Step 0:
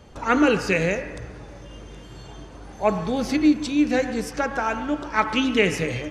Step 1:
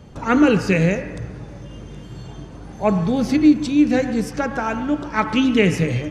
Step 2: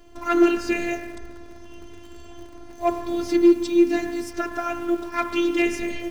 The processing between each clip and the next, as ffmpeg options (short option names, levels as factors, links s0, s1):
-af "equalizer=f=150:t=o:w=1.9:g=10"
-af "asoftclip=type=hard:threshold=0.422,afftfilt=real='hypot(re,im)*cos(PI*b)':imag='0':win_size=512:overlap=0.75,acrusher=bits=9:dc=4:mix=0:aa=0.000001"